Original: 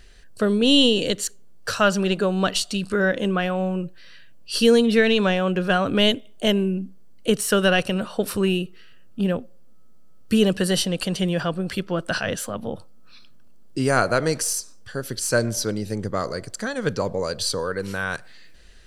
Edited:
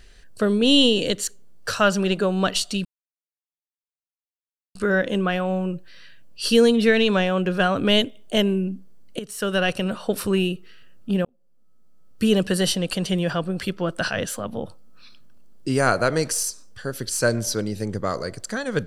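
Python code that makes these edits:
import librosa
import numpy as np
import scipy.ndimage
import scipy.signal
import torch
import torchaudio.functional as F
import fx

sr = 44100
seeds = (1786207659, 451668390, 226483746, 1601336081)

y = fx.edit(x, sr, fx.insert_silence(at_s=2.85, length_s=1.9),
    fx.fade_in_from(start_s=7.29, length_s=0.9, curve='qsin', floor_db=-18.5),
    fx.fade_in_span(start_s=9.35, length_s=1.16), tone=tone)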